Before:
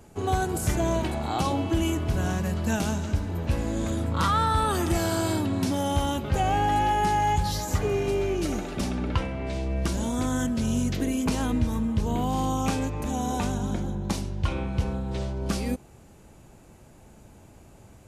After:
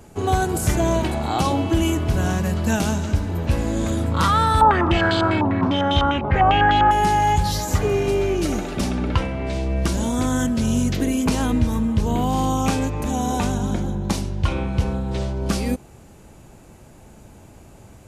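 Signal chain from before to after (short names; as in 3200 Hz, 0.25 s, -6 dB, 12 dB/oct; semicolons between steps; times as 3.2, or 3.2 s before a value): 4.61–6.91 stepped low-pass 10 Hz 920–3600 Hz; gain +5.5 dB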